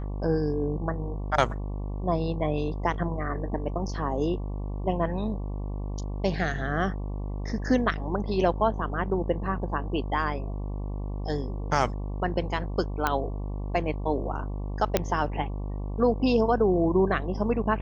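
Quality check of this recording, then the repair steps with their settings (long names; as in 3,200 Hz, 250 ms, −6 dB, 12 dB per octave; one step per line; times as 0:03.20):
mains buzz 50 Hz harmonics 23 −32 dBFS
0:13.07: click −10 dBFS
0:14.97: click −7 dBFS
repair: click removal
hum removal 50 Hz, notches 23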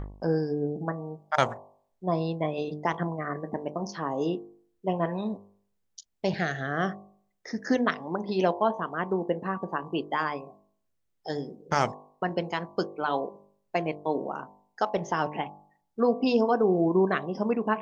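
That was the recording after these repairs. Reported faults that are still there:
none of them is left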